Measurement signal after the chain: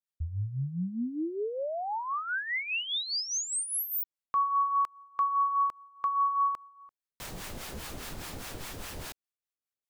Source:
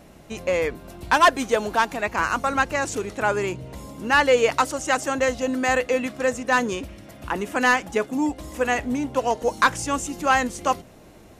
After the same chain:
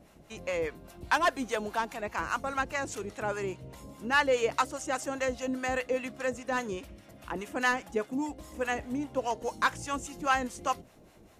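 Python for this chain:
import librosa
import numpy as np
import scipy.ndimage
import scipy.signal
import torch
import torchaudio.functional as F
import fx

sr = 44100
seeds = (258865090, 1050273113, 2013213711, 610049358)

y = fx.harmonic_tremolo(x, sr, hz=4.9, depth_pct=70, crossover_hz=680.0)
y = y * 10.0 ** (-5.5 / 20.0)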